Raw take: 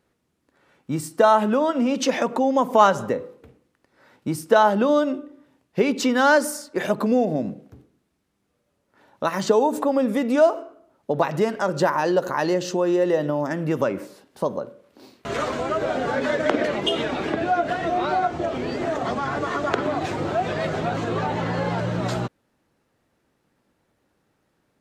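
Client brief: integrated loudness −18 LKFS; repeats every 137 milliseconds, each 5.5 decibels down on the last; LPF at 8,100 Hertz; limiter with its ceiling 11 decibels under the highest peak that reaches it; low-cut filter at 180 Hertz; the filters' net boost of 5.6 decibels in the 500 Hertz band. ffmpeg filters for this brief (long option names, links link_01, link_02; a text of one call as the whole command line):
ffmpeg -i in.wav -af "highpass=180,lowpass=8100,equalizer=frequency=500:width_type=o:gain=7,alimiter=limit=-10.5dB:level=0:latency=1,aecho=1:1:137|274|411|548|685|822|959:0.531|0.281|0.149|0.079|0.0419|0.0222|0.0118,volume=2dB" out.wav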